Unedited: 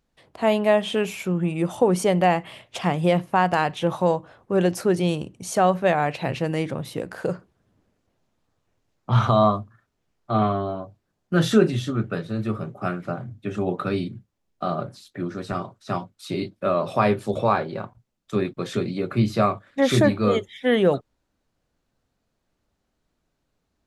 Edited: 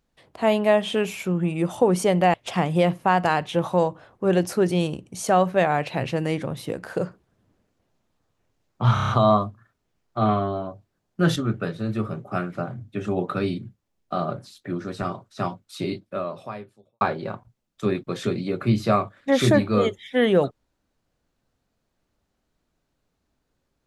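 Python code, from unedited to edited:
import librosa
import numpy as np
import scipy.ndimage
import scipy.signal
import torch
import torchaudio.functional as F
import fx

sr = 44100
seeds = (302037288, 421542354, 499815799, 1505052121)

y = fx.edit(x, sr, fx.cut(start_s=2.34, length_s=0.28),
    fx.stutter(start_s=9.22, slice_s=0.03, count=6),
    fx.cut(start_s=11.49, length_s=0.37),
    fx.fade_out_span(start_s=16.34, length_s=1.17, curve='qua'), tone=tone)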